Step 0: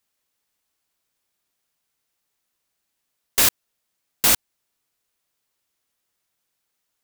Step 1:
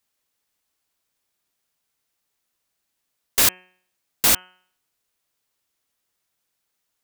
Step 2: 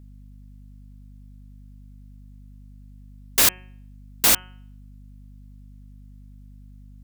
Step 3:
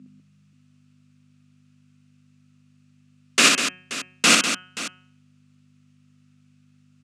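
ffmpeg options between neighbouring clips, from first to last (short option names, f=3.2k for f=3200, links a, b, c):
-af "bandreject=f=183:t=h:w=4,bandreject=f=366:t=h:w=4,bandreject=f=549:t=h:w=4,bandreject=f=732:t=h:w=4,bandreject=f=915:t=h:w=4,bandreject=f=1.098k:t=h:w=4,bandreject=f=1.281k:t=h:w=4,bandreject=f=1.464k:t=h:w=4,bandreject=f=1.647k:t=h:w=4,bandreject=f=1.83k:t=h:w=4,bandreject=f=2.013k:t=h:w=4,bandreject=f=2.196k:t=h:w=4,bandreject=f=2.379k:t=h:w=4,bandreject=f=2.562k:t=h:w=4,bandreject=f=2.745k:t=h:w=4,bandreject=f=2.928k:t=h:w=4,bandreject=f=3.111k:t=h:w=4"
-af "aeval=exprs='val(0)+0.00631*(sin(2*PI*50*n/s)+sin(2*PI*2*50*n/s)/2+sin(2*PI*3*50*n/s)/3+sin(2*PI*4*50*n/s)/4+sin(2*PI*5*50*n/s)/5)':c=same"
-filter_complex "[0:a]highpass=f=180:w=0.5412,highpass=f=180:w=1.3066,equalizer=f=180:t=q:w=4:g=8,equalizer=f=260:t=q:w=4:g=9,equalizer=f=880:t=q:w=4:g=-9,equalizer=f=1.3k:t=q:w=4:g=8,equalizer=f=2.6k:t=q:w=4:g=9,lowpass=f=8k:w=0.5412,lowpass=f=8k:w=1.3066,asplit=2[a][b];[b]aecho=0:1:52|62|198|529:0.119|0.668|0.398|0.188[c];[a][c]amix=inputs=2:normalize=0,volume=2.5dB"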